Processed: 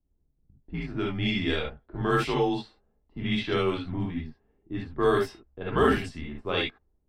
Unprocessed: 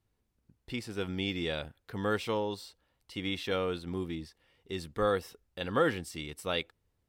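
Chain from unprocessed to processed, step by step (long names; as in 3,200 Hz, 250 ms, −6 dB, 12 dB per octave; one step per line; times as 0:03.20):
reverb whose tail is shaped and stops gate 90 ms rising, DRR −1.5 dB
low-pass that shuts in the quiet parts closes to 430 Hz, open at −22.5 dBFS
frequency shifter −78 Hz
level +2.5 dB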